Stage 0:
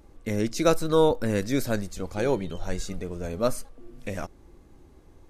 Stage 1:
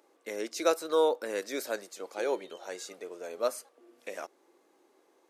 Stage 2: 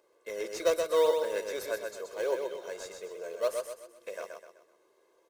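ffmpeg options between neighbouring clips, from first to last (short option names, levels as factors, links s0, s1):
-af "highpass=f=370:w=0.5412,highpass=f=370:w=1.3066,volume=0.631"
-filter_complex "[0:a]aecho=1:1:1.9:0.77,asplit=2[s0][s1];[s1]acrusher=samples=12:mix=1:aa=0.000001:lfo=1:lforange=12:lforate=3.3,volume=0.316[s2];[s0][s2]amix=inputs=2:normalize=0,aecho=1:1:127|254|381|508|635:0.562|0.225|0.09|0.036|0.0144,volume=0.501"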